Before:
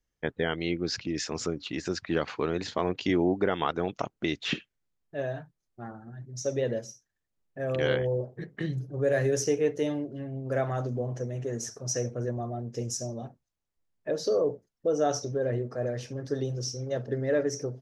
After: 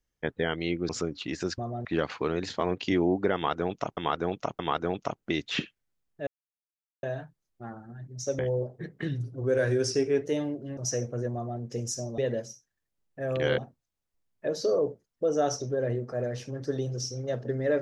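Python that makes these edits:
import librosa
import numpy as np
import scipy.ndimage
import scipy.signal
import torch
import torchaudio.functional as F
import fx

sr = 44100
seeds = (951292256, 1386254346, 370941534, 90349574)

y = fx.edit(x, sr, fx.cut(start_s=0.89, length_s=0.45),
    fx.repeat(start_s=3.53, length_s=0.62, count=3),
    fx.insert_silence(at_s=5.21, length_s=0.76),
    fx.move(start_s=6.57, length_s=1.4, to_s=13.21),
    fx.speed_span(start_s=8.65, length_s=1.08, speed=0.93),
    fx.cut(start_s=10.27, length_s=1.53),
    fx.duplicate(start_s=12.37, length_s=0.27, to_s=2.03), tone=tone)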